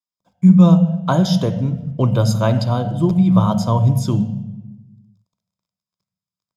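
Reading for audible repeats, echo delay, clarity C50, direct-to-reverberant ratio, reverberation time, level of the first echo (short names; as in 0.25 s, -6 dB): none, none, 12.0 dB, 9.0 dB, 1.0 s, none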